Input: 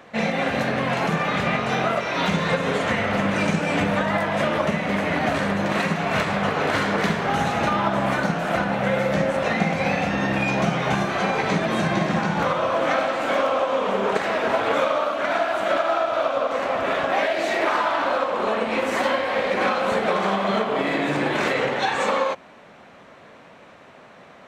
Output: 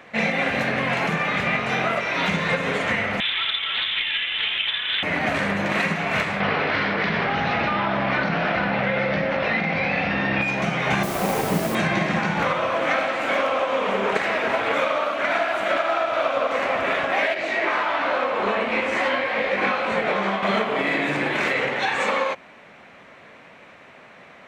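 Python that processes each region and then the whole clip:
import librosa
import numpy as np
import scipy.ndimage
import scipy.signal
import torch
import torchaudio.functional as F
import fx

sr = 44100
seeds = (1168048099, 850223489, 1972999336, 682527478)

y = fx.chain(x, sr, fx.freq_invert(carrier_hz=3700),
    fx.doppler_dist(depth_ms=0.14), at=(3.2, 5.03))
y = fx.chain(y, sr, fx.steep_lowpass(hz=5300.0, slope=48),
    fx.env_flatten(amount_pct=100), at=(6.4, 10.42))
y = fx.chain(y, sr, fx.median_filter(points=25),
    fx.lowpass(hz=2300.0, slope=12),
    fx.quant_dither(seeds[0], bits=6, dither='triangular'), at=(11.03, 11.75))
y = fx.chain(y, sr, fx.air_absorb(metres=58.0),
    fx.detune_double(cents=15), at=(17.34, 20.43))
y = fx.peak_eq(y, sr, hz=2200.0, db=7.5, octaves=0.88)
y = fx.rider(y, sr, range_db=10, speed_s=0.5)
y = F.gain(torch.from_numpy(y), -3.5).numpy()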